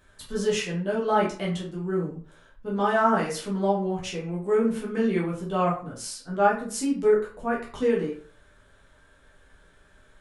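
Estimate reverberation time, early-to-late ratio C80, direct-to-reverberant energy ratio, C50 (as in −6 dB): 0.45 s, 12.0 dB, −5.5 dB, 7.0 dB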